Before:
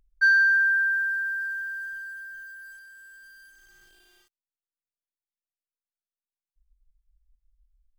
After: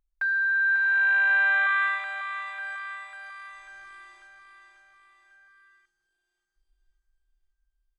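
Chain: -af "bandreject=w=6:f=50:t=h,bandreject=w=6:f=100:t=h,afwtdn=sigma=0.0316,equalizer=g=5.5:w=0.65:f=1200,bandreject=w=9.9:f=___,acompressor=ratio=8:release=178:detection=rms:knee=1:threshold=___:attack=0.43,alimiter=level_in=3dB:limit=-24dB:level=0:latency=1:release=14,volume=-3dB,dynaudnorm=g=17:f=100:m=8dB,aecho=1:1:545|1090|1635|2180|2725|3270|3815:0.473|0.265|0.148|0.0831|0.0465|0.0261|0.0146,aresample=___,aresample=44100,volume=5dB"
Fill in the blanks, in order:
2900, -25dB, 22050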